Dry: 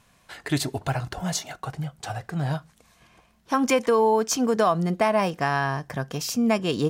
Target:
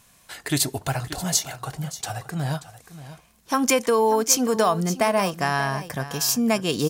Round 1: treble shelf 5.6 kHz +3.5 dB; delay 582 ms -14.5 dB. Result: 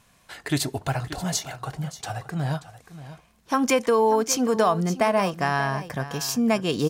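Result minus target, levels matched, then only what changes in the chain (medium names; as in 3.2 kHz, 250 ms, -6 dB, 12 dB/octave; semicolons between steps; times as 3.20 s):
8 kHz band -5.0 dB
change: treble shelf 5.6 kHz +14 dB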